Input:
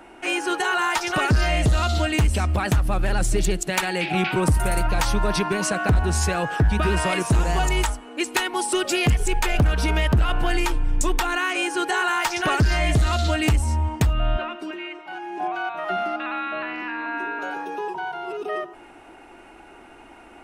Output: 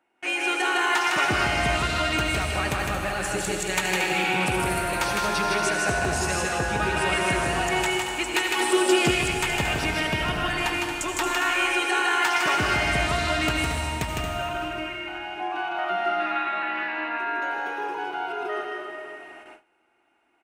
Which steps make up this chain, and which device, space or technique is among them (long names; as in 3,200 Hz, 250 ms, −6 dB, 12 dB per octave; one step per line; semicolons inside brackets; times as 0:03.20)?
stadium PA (high-pass filter 250 Hz 6 dB per octave; parametric band 2,200 Hz +4 dB 1.2 octaves; loudspeakers that aren't time-aligned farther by 54 metres −3 dB, 78 metres −10 dB; convolution reverb RT60 2.5 s, pre-delay 71 ms, DRR 2.5 dB)
noise gate with hold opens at −29 dBFS
0:08.60–0:09.11: parametric band 280 Hz +6 dB 2.7 octaves
level −5 dB